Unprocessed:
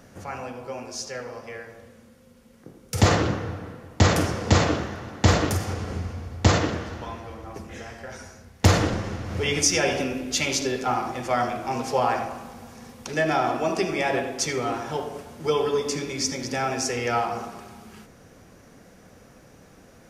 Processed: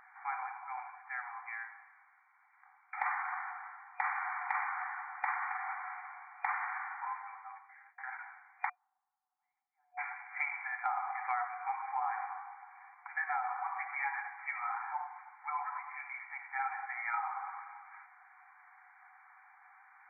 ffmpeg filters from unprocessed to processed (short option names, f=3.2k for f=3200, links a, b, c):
-filter_complex "[0:a]asplit=3[a][b][c];[a]afade=t=out:st=8.68:d=0.02[d];[b]asuperpass=centerf=170:order=4:qfactor=2.6,afade=t=in:st=8.68:d=0.02,afade=t=out:st=9.97:d=0.02[e];[c]afade=t=in:st=9.97:d=0.02[f];[d][e][f]amix=inputs=3:normalize=0,asplit=3[g][h][i];[g]afade=t=out:st=11.47:d=0.02[j];[h]flanger=delay=6.6:depth=9.6:regen=-33:speed=1:shape=sinusoidal,afade=t=in:st=11.47:d=0.02,afade=t=out:st=17.44:d=0.02[k];[i]afade=t=in:st=17.44:d=0.02[l];[j][k][l]amix=inputs=3:normalize=0,asplit=2[m][n];[m]atrim=end=7.98,asetpts=PTS-STARTPTS,afade=t=out:st=7.17:d=0.81[o];[n]atrim=start=7.98,asetpts=PTS-STARTPTS,afade=t=in:d=0.004:c=hsin[p];[o][p]concat=n=2:v=0:a=1,afftfilt=real='re*between(b*sr/4096,730,2400)':imag='im*between(b*sr/4096,730,2400)':win_size=4096:overlap=0.75,acompressor=threshold=-32dB:ratio=5"